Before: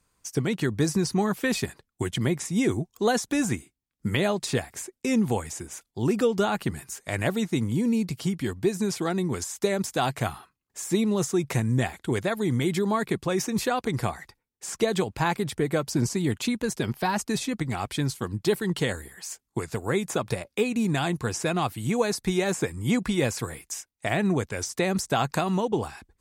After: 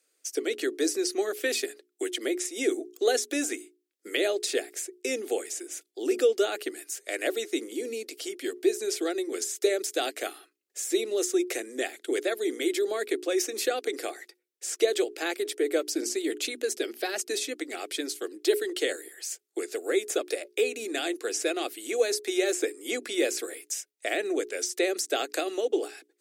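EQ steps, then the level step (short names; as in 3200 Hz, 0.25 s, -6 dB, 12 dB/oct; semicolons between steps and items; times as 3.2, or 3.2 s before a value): steep high-pass 300 Hz 48 dB/oct; notches 60/120/180/240/300/360/420 Hz; fixed phaser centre 400 Hz, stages 4; +2.0 dB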